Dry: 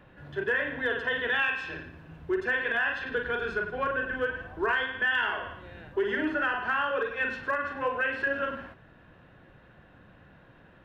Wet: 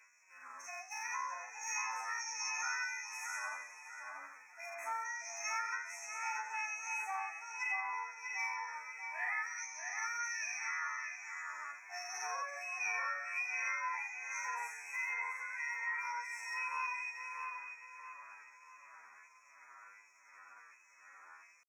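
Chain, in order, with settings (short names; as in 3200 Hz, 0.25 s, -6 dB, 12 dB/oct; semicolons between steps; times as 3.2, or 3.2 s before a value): bell 530 Hz +6 dB 1.6 oct; LFO high-pass sine 2.7 Hz 710–1800 Hz; chorus 1 Hz, delay 18.5 ms, depth 6 ms; FFT band-reject 1400–2900 Hz; compressor 4:1, threshold -38 dBFS, peak gain reduction 14 dB; pitch shift +10.5 st; tone controls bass 0 dB, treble +6 dB; on a send: darkening echo 0.318 s, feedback 45%, low-pass 2500 Hz, level -3.5 dB; on the sum: time stretch by phase-locked vocoder 2×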